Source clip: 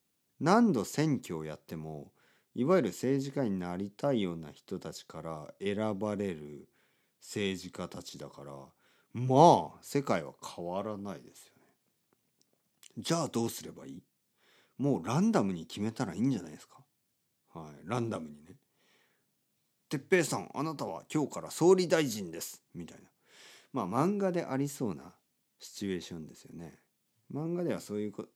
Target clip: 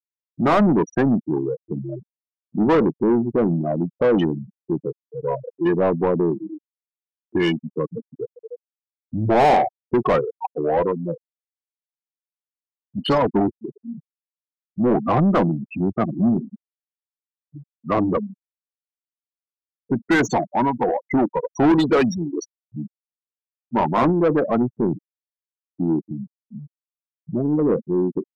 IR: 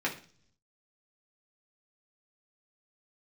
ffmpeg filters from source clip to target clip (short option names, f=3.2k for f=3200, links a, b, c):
-filter_complex "[0:a]afftfilt=real='re*gte(hypot(re,im),0.0398)':imag='im*gte(hypot(re,im),0.0398)':win_size=1024:overlap=0.75,asetrate=38170,aresample=44100,atempo=1.15535,asplit=2[a][b];[b]highpass=f=720:p=1,volume=32dB,asoftclip=type=tanh:threshold=-7dB[c];[a][c]amix=inputs=2:normalize=0,lowpass=f=1.5k:p=1,volume=-6dB"